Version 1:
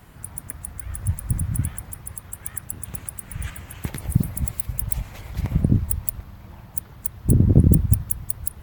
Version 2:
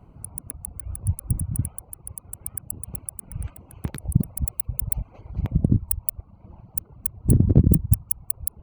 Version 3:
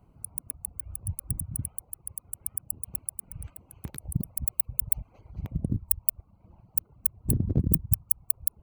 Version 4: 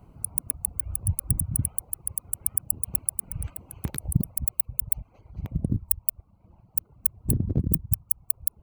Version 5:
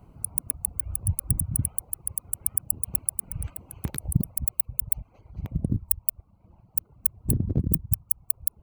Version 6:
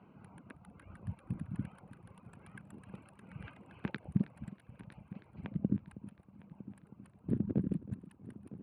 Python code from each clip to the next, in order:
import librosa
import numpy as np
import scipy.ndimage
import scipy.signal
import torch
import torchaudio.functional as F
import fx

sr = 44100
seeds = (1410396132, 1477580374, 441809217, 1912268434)

y1 = fx.wiener(x, sr, points=25)
y1 = fx.dereverb_blind(y1, sr, rt60_s=0.99)
y2 = fx.high_shelf(y1, sr, hz=5400.0, db=10.5)
y2 = F.gain(torch.from_numpy(y2), -9.5).numpy()
y3 = fx.rider(y2, sr, range_db=4, speed_s=0.5)
y3 = F.gain(torch.from_numpy(y3), 3.5).numpy()
y4 = y3
y5 = fx.cabinet(y4, sr, low_hz=200.0, low_slope=12, high_hz=3400.0, hz=(200.0, 680.0, 1600.0, 2600.0), db=(6, -3, 8, 4))
y5 = fx.echo_heads(y5, sr, ms=319, heads='first and third', feedback_pct=51, wet_db=-17.5)
y5 = F.gain(torch.from_numpy(y5), -3.0).numpy()